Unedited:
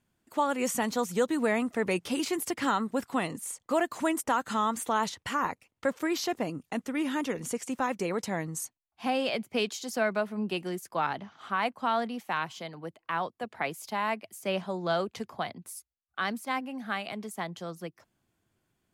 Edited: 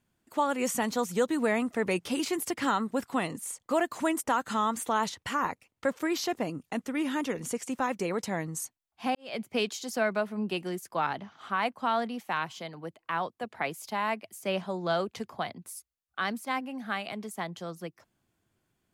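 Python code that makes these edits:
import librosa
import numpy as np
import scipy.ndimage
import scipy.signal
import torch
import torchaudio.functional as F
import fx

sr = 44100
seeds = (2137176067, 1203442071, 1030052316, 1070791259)

y = fx.edit(x, sr, fx.fade_in_span(start_s=9.15, length_s=0.25, curve='qua'), tone=tone)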